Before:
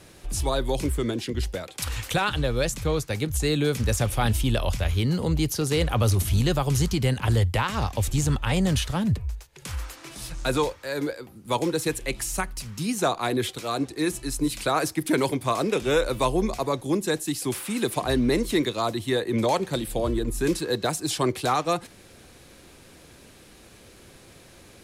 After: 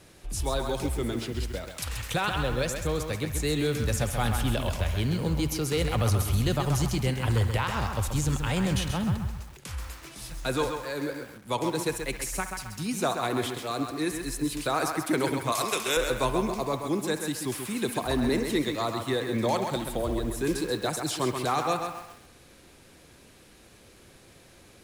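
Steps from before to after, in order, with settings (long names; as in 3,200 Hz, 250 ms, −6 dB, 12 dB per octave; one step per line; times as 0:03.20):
0:15.52–0:15.97: spectral tilt +4 dB per octave
delay with a band-pass on its return 66 ms, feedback 64%, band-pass 1,400 Hz, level −11 dB
feedback echo at a low word length 132 ms, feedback 35%, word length 7 bits, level −6.5 dB
level −4 dB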